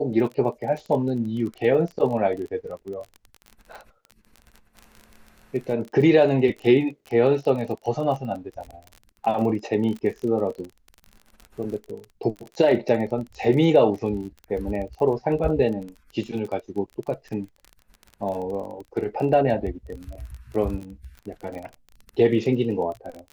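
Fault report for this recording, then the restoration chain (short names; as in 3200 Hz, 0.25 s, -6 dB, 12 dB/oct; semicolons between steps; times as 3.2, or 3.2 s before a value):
crackle 27/s -31 dBFS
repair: de-click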